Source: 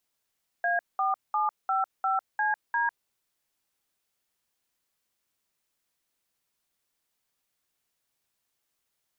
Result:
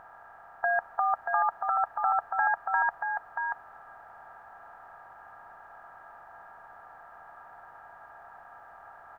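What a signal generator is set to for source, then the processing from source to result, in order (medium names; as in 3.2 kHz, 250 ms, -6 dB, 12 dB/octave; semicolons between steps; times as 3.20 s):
DTMF "A4755CD", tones 151 ms, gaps 199 ms, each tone -26 dBFS
spectral levelling over time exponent 0.4; tone controls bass +11 dB, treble -9 dB; delay 633 ms -5 dB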